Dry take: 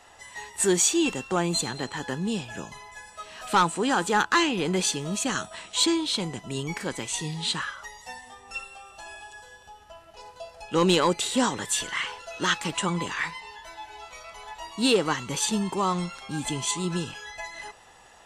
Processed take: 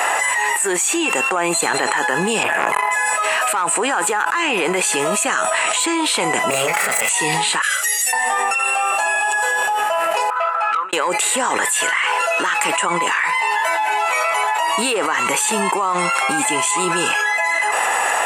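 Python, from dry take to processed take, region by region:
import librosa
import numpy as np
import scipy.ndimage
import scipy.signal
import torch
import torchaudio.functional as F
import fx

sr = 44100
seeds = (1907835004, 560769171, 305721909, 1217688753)

y = fx.chain(x, sr, fx.peak_eq(hz=5900.0, db=-11.5, octaves=1.4),
    fx.transformer_sat(knee_hz=1600.0), at=(2.43, 2.91))
y = fx.chain(y, sr, fx.lower_of_two(delay_ms=1.5),
    fx.over_compress(threshold_db=-38.0, ratio=-0.5),
    fx.doubler(ms=31.0, db=-3.0), at=(6.5, 7.09))
y = fx.chain(y, sr, fx.pre_emphasis(coefficient=0.9),
    fx.fixed_phaser(hz=410.0, stages=4), at=(7.62, 8.13))
y = fx.chain(y, sr, fx.over_compress(threshold_db=-29.0, ratio=-0.5),
    fx.bandpass_q(hz=1300.0, q=16.0),
    fx.transformer_sat(knee_hz=2600.0), at=(10.3, 10.93))
y = scipy.signal.sosfilt(scipy.signal.butter(2, 630.0, 'highpass', fs=sr, output='sos'), y)
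y = fx.band_shelf(y, sr, hz=4500.0, db=-12.0, octaves=1.2)
y = fx.env_flatten(y, sr, amount_pct=100)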